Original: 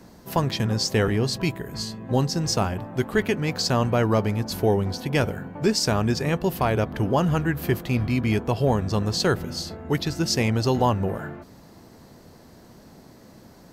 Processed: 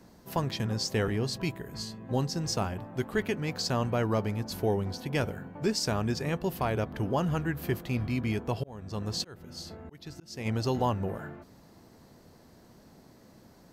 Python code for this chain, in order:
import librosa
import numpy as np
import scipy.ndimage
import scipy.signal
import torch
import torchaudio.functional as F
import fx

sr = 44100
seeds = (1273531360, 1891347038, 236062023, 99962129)

y = fx.auto_swell(x, sr, attack_ms=541.0, at=(8.31, 10.45), fade=0.02)
y = y * librosa.db_to_amplitude(-7.0)